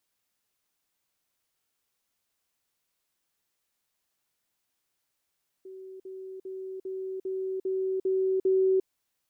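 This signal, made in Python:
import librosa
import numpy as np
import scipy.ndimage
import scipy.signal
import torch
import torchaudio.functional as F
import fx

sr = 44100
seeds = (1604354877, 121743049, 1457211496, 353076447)

y = fx.level_ladder(sr, hz=379.0, from_db=-41.0, step_db=3.0, steps=8, dwell_s=0.35, gap_s=0.05)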